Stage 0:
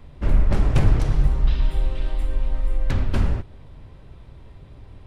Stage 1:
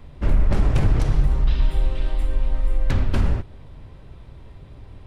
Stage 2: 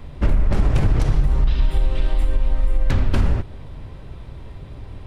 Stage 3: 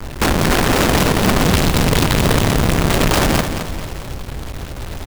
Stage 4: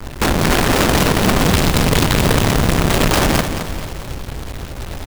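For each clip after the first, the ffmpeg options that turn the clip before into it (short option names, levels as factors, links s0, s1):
-af "alimiter=level_in=2.99:limit=0.891:release=50:level=0:latency=1,volume=0.398"
-af "acompressor=threshold=0.126:ratio=6,volume=2"
-af "acrusher=bits=5:mix=0:aa=0.000001,aeval=exprs='(mod(6.31*val(0)+1,2)-1)/6.31':c=same,aecho=1:1:218|436|654|872|1090:0.398|0.159|0.0637|0.0255|0.0102,volume=2"
-af "acrusher=bits=3:mode=log:mix=0:aa=0.000001"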